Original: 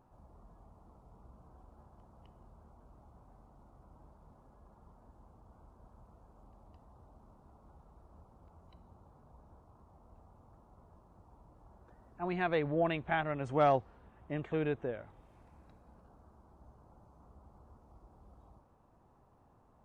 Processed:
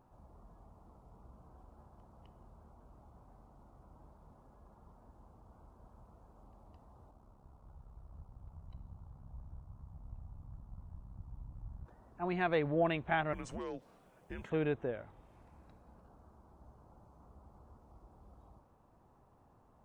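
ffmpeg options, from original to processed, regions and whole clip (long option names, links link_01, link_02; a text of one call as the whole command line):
ffmpeg -i in.wav -filter_complex "[0:a]asettb=1/sr,asplit=3[link_01][link_02][link_03];[link_01]atrim=end=7.114[link_04];[link_02]atrim=start=7.11:end=11.86,asetpts=PTS-STARTPTS,afade=type=in:duration=0.004:curve=qsin,afade=type=out:start_time=4.746:duration=0.004:curve=qsin,asubboost=boost=10:cutoff=140,tremolo=f=66:d=0.667[link_05];[link_03]atrim=start=11.856[link_06];[link_04][link_05]acrossfade=duration=0.004:curve1=hsin:curve2=qsin[link_07];[link_07][link_06]acrossfade=duration=0.004:curve1=qsin:curve2=hsin,asettb=1/sr,asplit=3[link_08][link_09][link_10];[link_08]atrim=end=13.334[link_11];[link_09]atrim=start=13.33:end=14.5,asetpts=PTS-STARTPTS,afade=type=in:duration=0.004:curve=qsin,afade=type=out:start_time=1.166:duration=0.004:curve=qsin,bass=frequency=250:gain=-14,treble=frequency=4000:gain=11,acompressor=threshold=-37dB:ratio=12:attack=3.2:release=140:knee=1:detection=peak,afreqshift=-240[link_12];[link_10]atrim=start=14.496[link_13];[link_11][link_12]acrossfade=duration=0.004:curve1=hsin:curve2=qsin[link_14];[link_14][link_13]acrossfade=duration=0.004:curve1=qsin:curve2=hsin" out.wav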